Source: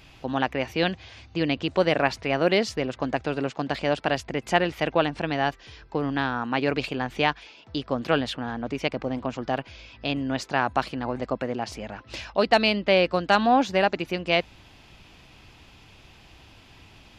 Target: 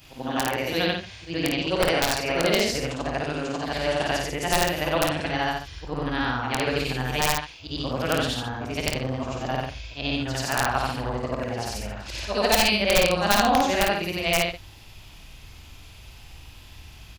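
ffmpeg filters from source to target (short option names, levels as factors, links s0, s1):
-af "afftfilt=real='re':imag='-im':win_size=8192:overlap=0.75,aemphasis=mode=production:type=50fm,aeval=exprs='(mod(4.73*val(0)+1,2)-1)/4.73':c=same,asubboost=boost=3:cutoff=120,aecho=1:1:24|53:0.211|0.631,volume=1.5"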